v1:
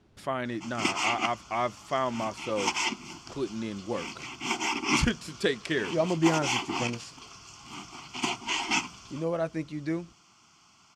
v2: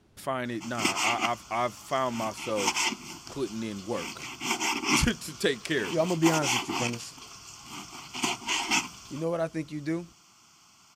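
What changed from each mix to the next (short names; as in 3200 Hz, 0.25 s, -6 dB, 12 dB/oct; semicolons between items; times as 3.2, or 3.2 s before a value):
master: remove air absorption 58 m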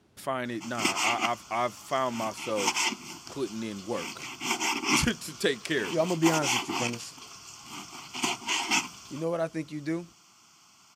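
master: add HPF 110 Hz 6 dB/oct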